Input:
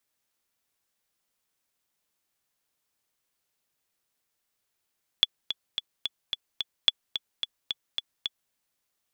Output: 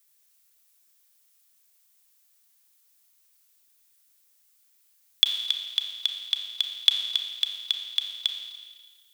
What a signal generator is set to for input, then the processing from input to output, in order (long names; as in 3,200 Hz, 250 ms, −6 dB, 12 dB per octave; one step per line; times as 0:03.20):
click track 218 BPM, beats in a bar 6, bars 2, 3,420 Hz, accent 10.5 dB −5 dBFS
spectral tilt +4 dB per octave
brickwall limiter −1.5 dBFS
four-comb reverb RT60 1.6 s, combs from 28 ms, DRR 4.5 dB